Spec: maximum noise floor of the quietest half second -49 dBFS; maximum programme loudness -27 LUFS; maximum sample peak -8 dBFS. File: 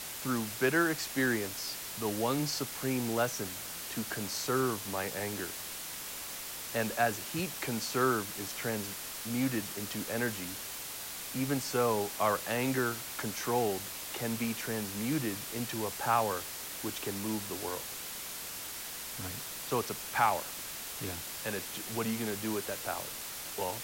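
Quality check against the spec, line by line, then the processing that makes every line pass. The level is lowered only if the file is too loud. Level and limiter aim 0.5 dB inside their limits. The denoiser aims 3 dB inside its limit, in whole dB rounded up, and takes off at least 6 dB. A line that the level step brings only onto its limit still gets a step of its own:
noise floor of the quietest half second -42 dBFS: fail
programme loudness -33.5 LUFS: pass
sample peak -14.0 dBFS: pass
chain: noise reduction 10 dB, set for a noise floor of -42 dBFS

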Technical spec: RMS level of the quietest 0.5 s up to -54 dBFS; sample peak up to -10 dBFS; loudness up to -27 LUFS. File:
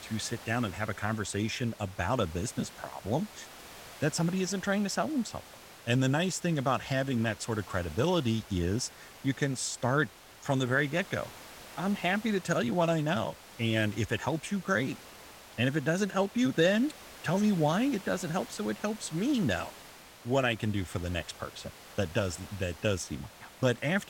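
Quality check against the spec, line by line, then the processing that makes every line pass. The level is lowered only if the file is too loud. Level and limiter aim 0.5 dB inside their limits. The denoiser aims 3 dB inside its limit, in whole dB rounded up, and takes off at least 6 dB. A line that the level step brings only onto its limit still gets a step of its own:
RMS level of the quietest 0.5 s -51 dBFS: fail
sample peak -13.0 dBFS: pass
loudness -31.0 LUFS: pass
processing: noise reduction 6 dB, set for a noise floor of -51 dBFS

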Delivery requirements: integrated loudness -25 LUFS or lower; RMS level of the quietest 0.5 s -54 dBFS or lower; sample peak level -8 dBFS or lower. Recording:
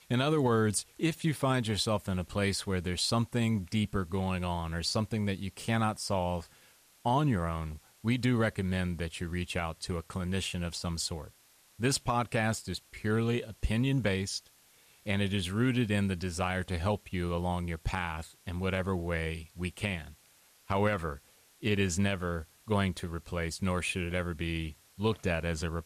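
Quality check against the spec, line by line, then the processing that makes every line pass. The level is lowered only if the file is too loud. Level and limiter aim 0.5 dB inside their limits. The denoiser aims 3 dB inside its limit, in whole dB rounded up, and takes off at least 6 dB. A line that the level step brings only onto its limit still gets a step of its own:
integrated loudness -32.0 LUFS: pass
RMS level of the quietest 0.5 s -63 dBFS: pass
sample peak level -17.0 dBFS: pass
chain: none needed

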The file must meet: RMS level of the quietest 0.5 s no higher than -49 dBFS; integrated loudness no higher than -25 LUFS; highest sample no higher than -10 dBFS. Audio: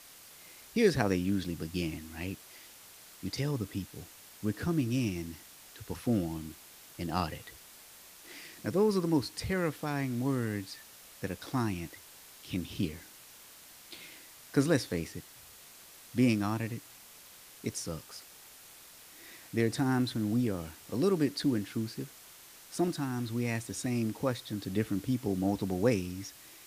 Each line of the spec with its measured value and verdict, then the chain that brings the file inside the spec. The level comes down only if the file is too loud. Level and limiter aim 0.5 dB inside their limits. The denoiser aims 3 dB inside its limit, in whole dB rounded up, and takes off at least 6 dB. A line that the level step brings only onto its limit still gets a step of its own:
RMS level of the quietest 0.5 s -54 dBFS: pass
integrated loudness -33.0 LUFS: pass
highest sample -12.0 dBFS: pass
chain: none needed

